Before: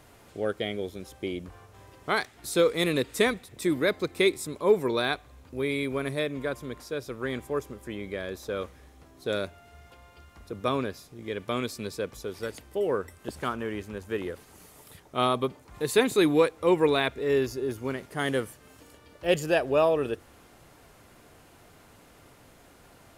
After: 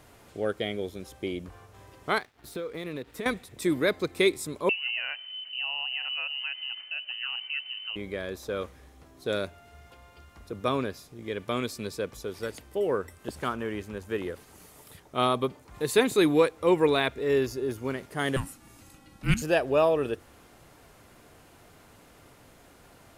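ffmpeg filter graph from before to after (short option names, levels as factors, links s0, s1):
-filter_complex "[0:a]asettb=1/sr,asplit=3[s0][s1][s2];[s0]atrim=end=2.184[s3];[s1]atrim=start=2.18:end=3.26,asetpts=PTS-STARTPTS,afade=t=in:d=0.004:c=qsin,afade=t=out:st=1.076:d=0.004:c=qsin,acompressor=threshold=0.0282:ratio=6:attack=3.2:release=140:knee=1:detection=peak,equalizer=f=7500:w=0.65:g=-12,aeval=exprs='sgn(val(0))*max(abs(val(0))-0.0015,0)':c=same[s4];[s2]atrim=start=3.256[s5];[s3][s4]acrossfade=d=0.004:c1=hsin:c2=qsin[s6];[s6][s5]acrossfade=d=0.004:c1=qsin:c2=hsin,asettb=1/sr,asplit=3[s7][s8][s9];[s7]atrim=end=4.694[s10];[s8]atrim=start=4.69:end=7.96,asetpts=PTS-STARTPTS,afade=t=in:d=0.004:c=qsin,afade=t=out:st=3.266:d=0.004:c=qsin,aemphasis=mode=reproduction:type=bsi,acompressor=threshold=0.02:ratio=2:attack=3.2:release=140:knee=1:detection=peak,lowpass=f=2600:t=q:w=0.5098,lowpass=f=2600:t=q:w=0.6013,lowpass=f=2600:t=q:w=0.9,lowpass=f=2600:t=q:w=2.563,afreqshift=-3100[s11];[s9]atrim=start=7.956[s12];[s10][s11]acrossfade=d=0.004:c1=hsin:c2=qsin[s13];[s13][s12]acrossfade=d=0.004:c1=qsin:c2=hsin,asettb=1/sr,asplit=3[s14][s15][s16];[s14]atrim=end=18.364[s17];[s15]atrim=start=18.36:end=19.42,asetpts=PTS-STARTPTS,afade=t=in:d=0.004:c=qsin,afade=t=out:st=1.056:d=0.004:c=qsin,equalizer=f=10000:t=o:w=1.1:g=3.5,afreqshift=-380[s18];[s16]atrim=start=19.416[s19];[s17][s18]acrossfade=d=0.004:c1=hsin:c2=qsin[s20];[s20][s19]acrossfade=d=0.004:c1=qsin:c2=hsin"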